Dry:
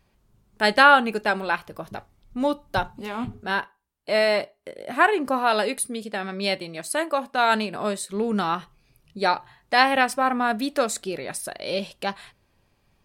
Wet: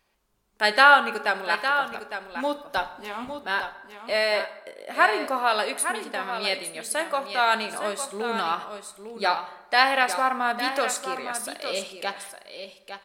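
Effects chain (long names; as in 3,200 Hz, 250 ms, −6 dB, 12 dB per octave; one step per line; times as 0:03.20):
parametric band 120 Hz −9 dB 0.98 octaves
on a send: single-tap delay 86 ms −22 dB
on the sum: floating-point word with a short mantissa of 6 bits
low-shelf EQ 370 Hz −11.5 dB
single-tap delay 857 ms −9 dB
dense smooth reverb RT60 1.1 s, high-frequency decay 0.65×, DRR 11.5 dB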